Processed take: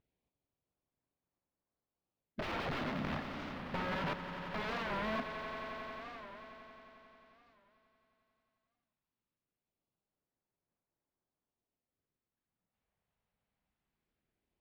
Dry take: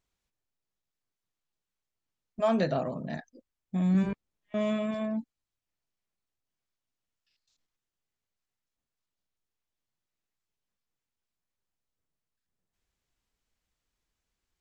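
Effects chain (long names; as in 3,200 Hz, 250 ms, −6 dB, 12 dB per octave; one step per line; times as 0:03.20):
high-pass filter 160 Hz 6 dB per octave
in parallel at −4 dB: sample-rate reduction 1,900 Hz, jitter 0%
on the sum: auto-filter notch sine 0.21 Hz 310–3,400 Hz
pitch vibrato 0.47 Hz 7.1 cents
wrap-around overflow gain 29 dB
high-frequency loss of the air 330 metres
on a send: echo that builds up and dies away 89 ms, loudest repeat 5, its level −13 dB
on the sum: wow of a warped record 45 rpm, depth 160 cents
level −1 dB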